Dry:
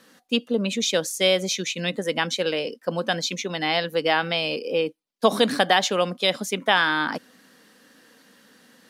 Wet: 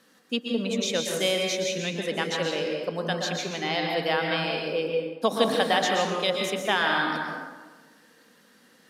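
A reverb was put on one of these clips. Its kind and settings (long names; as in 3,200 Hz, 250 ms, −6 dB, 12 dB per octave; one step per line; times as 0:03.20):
dense smooth reverb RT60 1.3 s, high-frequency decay 0.55×, pre-delay 110 ms, DRR 0.5 dB
level −5.5 dB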